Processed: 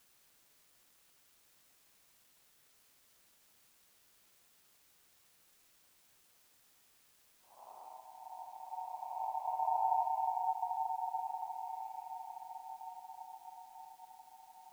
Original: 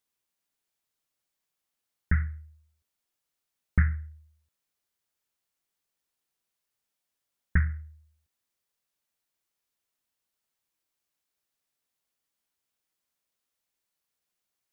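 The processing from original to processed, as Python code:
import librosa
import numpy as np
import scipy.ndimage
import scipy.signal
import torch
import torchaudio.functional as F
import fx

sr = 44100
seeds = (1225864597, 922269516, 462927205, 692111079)

y = fx.over_compress(x, sr, threshold_db=-30.0, ratio=-0.5)
y = fx.paulstretch(y, sr, seeds[0], factor=16.0, window_s=0.05, from_s=7.07)
y = fx.filter_sweep_lowpass(y, sr, from_hz=500.0, to_hz=1400.0, start_s=10.98, end_s=12.0, q=1.6)
y = fx.quant_dither(y, sr, seeds[1], bits=10, dither='triangular')
y = y * np.sin(2.0 * np.pi * 830.0 * np.arange(len(y)) / sr)
y = y * 10.0 ** (-5.0 / 20.0)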